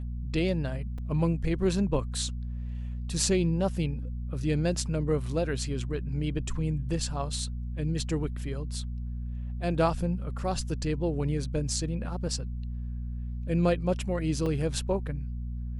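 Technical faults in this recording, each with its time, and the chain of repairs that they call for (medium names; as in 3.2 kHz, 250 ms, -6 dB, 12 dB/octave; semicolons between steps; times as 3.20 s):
hum 60 Hz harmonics 4 -34 dBFS
0.98 s: dropout 4 ms
14.46 s: dropout 4.1 ms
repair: de-hum 60 Hz, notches 4; interpolate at 0.98 s, 4 ms; interpolate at 14.46 s, 4.1 ms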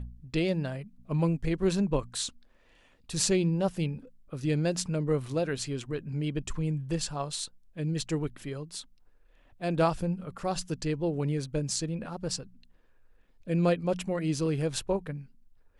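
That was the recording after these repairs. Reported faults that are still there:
nothing left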